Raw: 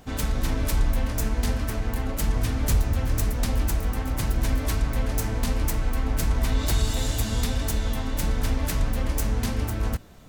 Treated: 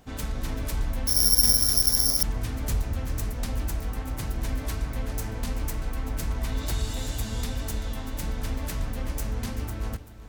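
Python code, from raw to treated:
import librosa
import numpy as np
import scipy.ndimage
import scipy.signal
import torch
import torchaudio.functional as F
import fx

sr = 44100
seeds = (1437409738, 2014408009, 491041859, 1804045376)

y = x + 10.0 ** (-14.0 / 20.0) * np.pad(x, (int(386 * sr / 1000.0), 0))[:len(x)]
y = fx.resample_bad(y, sr, factor=8, down='filtered', up='zero_stuff', at=(1.07, 2.23))
y = F.gain(torch.from_numpy(y), -5.5).numpy()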